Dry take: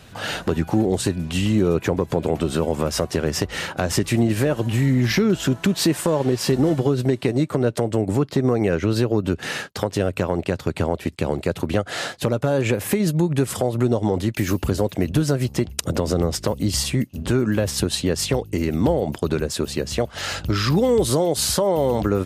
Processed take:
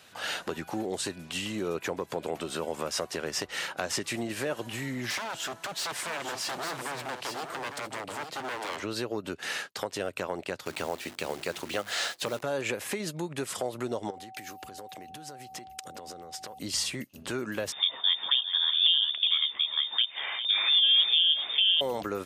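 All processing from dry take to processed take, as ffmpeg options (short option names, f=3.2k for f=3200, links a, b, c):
-filter_complex "[0:a]asettb=1/sr,asplit=3[a][b][c];[a]atrim=end=5.104[d];[b]atrim=start=5.1:end=8.83,asetpts=PTS-STARTPTS,afade=t=in:d=0.004:c=qsin,afade=t=out:st=3.726:d=0.004:c=qsin,aeval=exprs='0.0891*(abs(mod(val(0)/0.0891+3,4)-2)-1)':c=same,aecho=1:1:854:0.422,atrim=end_sample=164493[e];[c]atrim=start=8.826[f];[d][e]acrossfade=d=0.004:c1=hsin:c2=qsin[g];[g][f]acrossfade=d=0.004:c1=qsin:c2=hsin,asettb=1/sr,asplit=3[h][i][j];[h]atrim=end=10.654[k];[i]atrim=start=10.65:end=12.42,asetpts=PTS-STARTPTS,afade=t=in:d=0.004:c=qsin,afade=t=out:st=1.766:d=0.004:c=qsin,equalizer=f=5.2k:t=o:w=2.5:g=4.5,bandreject=f=50:t=h:w=6,bandreject=f=100:t=h:w=6,bandreject=f=150:t=h:w=6,bandreject=f=200:t=h:w=6,bandreject=f=250:t=h:w=6,bandreject=f=300:t=h:w=6,bandreject=f=350:t=h:w=6,acrusher=bits=7:dc=4:mix=0:aa=0.000001[l];[j]atrim=start=12.416[m];[k][l]acrossfade=d=0.004:c1=hsin:c2=qsin[n];[n][m]acrossfade=d=0.004:c1=qsin:c2=hsin,asettb=1/sr,asplit=3[o][p][q];[o]atrim=end=14.104[r];[p]atrim=start=14.1:end=16.59,asetpts=PTS-STARTPTS,afade=t=in:d=0.004:c=qsin,afade=t=out:st=2.486:d=0.004:c=qsin,acompressor=threshold=-29dB:ratio=8:attack=3.2:release=140:knee=1:detection=peak,aeval=exprs='val(0)+0.0141*sin(2*PI*760*n/s)':c=same[s];[q]atrim=start=16.586[t];[r][s]acrossfade=d=0.004:c1=hsin:c2=qsin[u];[u][t]acrossfade=d=0.004:c1=qsin:c2=hsin,asettb=1/sr,asplit=3[v][w][x];[v]atrim=end=17.724[y];[w]atrim=start=17.72:end=21.81,asetpts=PTS-STARTPTS,afade=t=in:d=0.004:c=qsin,afade=t=out:st=4.086:d=0.004:c=qsin,aecho=1:1:404:0.299,atrim=end_sample=180369,lowpass=f=3.1k:t=q:w=0.5098,lowpass=f=3.1k:t=q:w=0.6013,lowpass=f=3.1k:t=q:w=0.9,lowpass=f=3.1k:t=q:w=2.563,afreqshift=-3700[z];[x]atrim=start=21.806[aa];[y][z]acrossfade=d=0.004:c1=hsin:c2=qsin[ab];[ab][aa]acrossfade=d=0.004:c1=qsin:c2=hsin,acrossover=split=9300[ac][ad];[ad]acompressor=threshold=-42dB:ratio=4:attack=1:release=60[ae];[ac][ae]amix=inputs=2:normalize=0,highpass=f=850:p=1,volume=-4.5dB"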